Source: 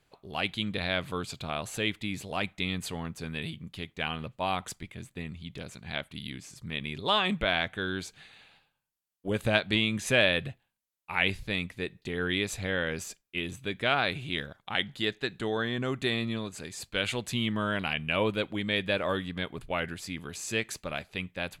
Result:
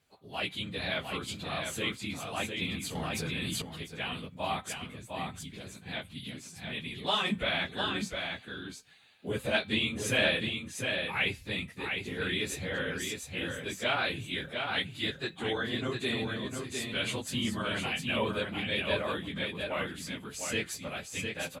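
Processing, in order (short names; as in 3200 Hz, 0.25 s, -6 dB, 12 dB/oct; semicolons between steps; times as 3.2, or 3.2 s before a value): phase scrambler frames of 50 ms; HPF 59 Hz; high shelf 4600 Hz +5.5 dB; resonator 260 Hz, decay 0.33 s, harmonics all, mix 40%; echo 0.705 s -5 dB; 2.95–3.62 fast leveller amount 100%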